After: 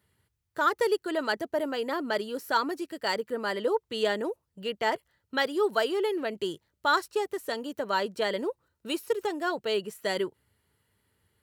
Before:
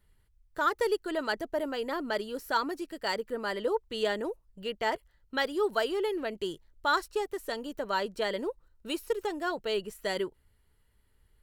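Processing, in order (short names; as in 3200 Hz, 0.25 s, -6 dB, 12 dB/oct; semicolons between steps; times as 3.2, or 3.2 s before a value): HPF 87 Hz 24 dB/oct; gain +2.5 dB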